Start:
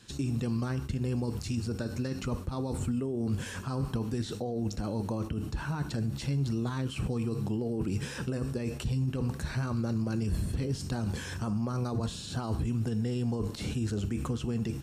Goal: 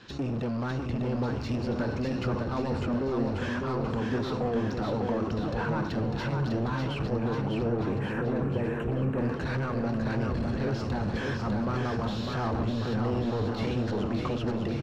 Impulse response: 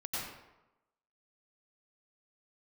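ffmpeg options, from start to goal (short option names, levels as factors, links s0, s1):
-filter_complex "[0:a]lowpass=f=5700:w=0.5412,lowpass=f=5700:w=1.3066,asoftclip=type=hard:threshold=0.0335,asplit=2[s0][s1];[s1]highpass=f=720:p=1,volume=6.31,asoftclip=type=tanh:threshold=0.0531[s2];[s0][s2]amix=inputs=2:normalize=0,lowpass=f=1000:p=1,volume=0.501,asettb=1/sr,asplit=3[s3][s4][s5];[s3]atrim=end=7.064[s6];[s4]atrim=start=7.06:end=9.18,asetpts=PTS-STARTPTS,afade=t=in:d=0.004:c=qsin,afade=t=out:st=2.116:d=0.004:c=qsin,asuperstop=centerf=4500:order=4:qfactor=0.75[s7];[s5]atrim=start=9.176[s8];[s6][s7]acrossfade=d=0.004:c1=hsin:c2=qsin[s9];[s9][s8]acrossfade=d=0.004:c1=qsin:c2=hsin,aecho=1:1:600|1140|1626|2063|2457:0.631|0.398|0.251|0.158|0.1,volume=1.58"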